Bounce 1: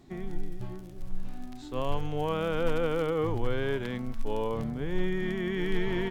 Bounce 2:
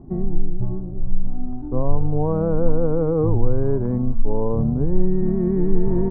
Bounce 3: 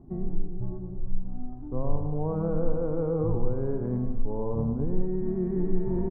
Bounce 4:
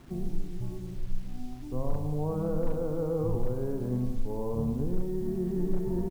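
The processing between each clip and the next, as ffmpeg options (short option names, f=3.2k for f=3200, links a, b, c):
-filter_complex "[0:a]lowpass=f=1k:w=0.5412,lowpass=f=1k:w=1.3066,lowshelf=f=300:g=11.5,asplit=2[a][b];[b]acompressor=threshold=-23dB:ratio=6,volume=0.5dB[c];[a][c]amix=inputs=2:normalize=0"
-af "aecho=1:1:106|212|318|424|530|636:0.447|0.228|0.116|0.0593|0.0302|0.0154,volume=-8.5dB"
-filter_complex "[0:a]aresample=16000,volume=15dB,asoftclip=hard,volume=-15dB,aresample=44100,acrusher=bits=8:mix=0:aa=0.000001,asplit=2[a][b];[b]adelay=40,volume=-12dB[c];[a][c]amix=inputs=2:normalize=0,volume=-2.5dB"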